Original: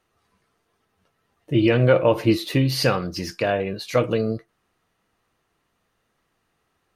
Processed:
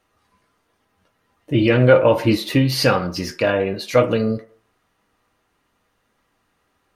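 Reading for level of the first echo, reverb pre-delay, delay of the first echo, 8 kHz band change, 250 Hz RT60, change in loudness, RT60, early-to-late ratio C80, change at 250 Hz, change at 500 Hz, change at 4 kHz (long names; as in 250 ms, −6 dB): no echo audible, 3 ms, no echo audible, +3.0 dB, 0.40 s, +3.5 dB, 0.45 s, 19.0 dB, +3.0 dB, +4.0 dB, +3.0 dB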